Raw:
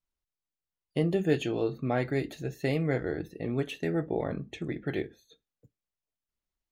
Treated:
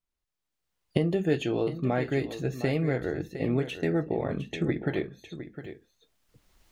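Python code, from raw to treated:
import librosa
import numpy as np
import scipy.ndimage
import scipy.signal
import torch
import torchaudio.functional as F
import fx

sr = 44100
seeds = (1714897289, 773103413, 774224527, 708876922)

y = fx.recorder_agc(x, sr, target_db=-17.5, rise_db_per_s=16.0, max_gain_db=30)
y = fx.high_shelf(y, sr, hz=8000.0, db=-5.5)
y = y + 10.0 ** (-12.0 / 20.0) * np.pad(y, (int(709 * sr / 1000.0), 0))[:len(y)]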